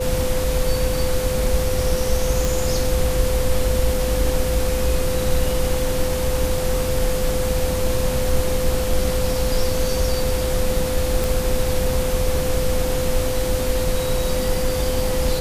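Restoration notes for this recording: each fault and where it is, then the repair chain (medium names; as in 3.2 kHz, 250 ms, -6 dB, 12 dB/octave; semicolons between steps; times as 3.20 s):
whine 510 Hz -23 dBFS
2.45 s: pop
11.24 s: pop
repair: de-click; band-stop 510 Hz, Q 30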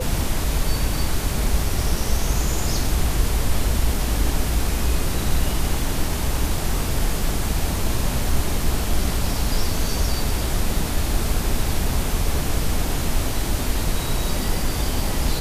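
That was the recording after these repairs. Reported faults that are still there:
nothing left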